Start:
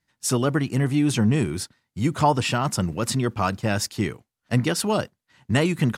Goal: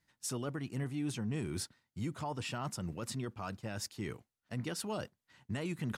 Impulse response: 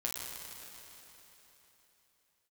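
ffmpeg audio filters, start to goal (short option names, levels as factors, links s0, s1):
-af "areverse,acompressor=threshold=0.0316:ratio=5,areverse,alimiter=level_in=1.41:limit=0.0631:level=0:latency=1:release=388,volume=0.708,volume=0.841"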